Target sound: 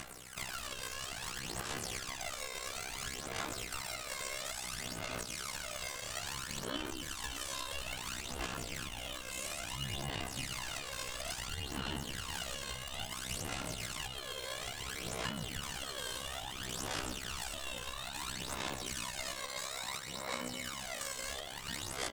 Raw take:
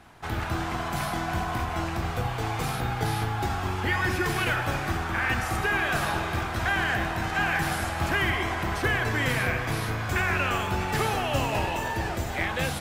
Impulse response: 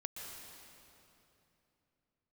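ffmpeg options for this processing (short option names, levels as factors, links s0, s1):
-filter_complex "[0:a]tremolo=f=72:d=0.857,asplit=2[s0][s1];[s1]adelay=350,highpass=300,lowpass=3400,asoftclip=type=hard:threshold=0.0708,volume=0.316[s2];[s0][s2]amix=inputs=2:normalize=0,acrossover=split=1100[s3][s4];[s3]acrusher=samples=23:mix=1:aa=0.000001:lfo=1:lforange=23:lforate=0.32[s5];[s5][s4]amix=inputs=2:normalize=0,acrossover=split=1200|6400[s6][s7][s8];[s6]acompressor=threshold=0.0112:ratio=4[s9];[s7]acompressor=threshold=0.0178:ratio=4[s10];[s8]acompressor=threshold=0.00158:ratio=4[s11];[s9][s10][s11]amix=inputs=3:normalize=0,equalizer=f=75:w=0.85:g=-12.5,aeval=exprs='val(0)*sin(2*PI*1500*n/s)':c=same,atempo=0.63,alimiter=level_in=2.11:limit=0.0631:level=0:latency=1:release=282,volume=0.473,asetrate=40517,aresample=44100,firequalizer=gain_entry='entry(3300,0);entry(7900,15);entry(12000,10)':delay=0.05:min_phase=1,acompressor=mode=upward:threshold=0.00708:ratio=2.5,aphaser=in_gain=1:out_gain=1:delay=1.9:decay=0.61:speed=0.59:type=sinusoidal"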